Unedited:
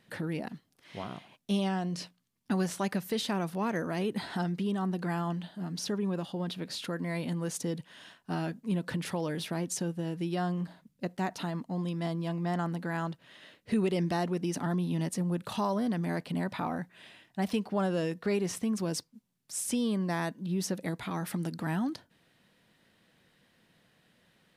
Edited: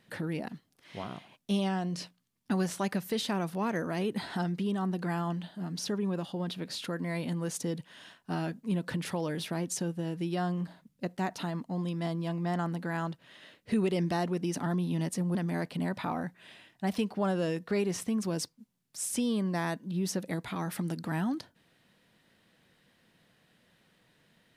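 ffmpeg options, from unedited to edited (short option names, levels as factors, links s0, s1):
-filter_complex "[0:a]asplit=2[s0][s1];[s0]atrim=end=15.352[s2];[s1]atrim=start=15.898[s3];[s2][s3]acrossfade=d=0.004:c1=hsin:c2=hsin"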